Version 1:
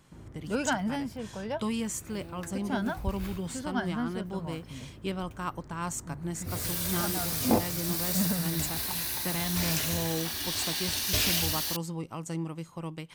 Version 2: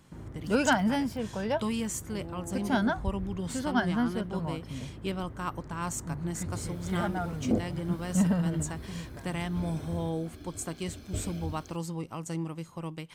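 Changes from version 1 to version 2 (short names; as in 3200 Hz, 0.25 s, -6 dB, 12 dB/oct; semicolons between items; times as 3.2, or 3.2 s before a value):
first sound +4.5 dB; second sound: add running mean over 47 samples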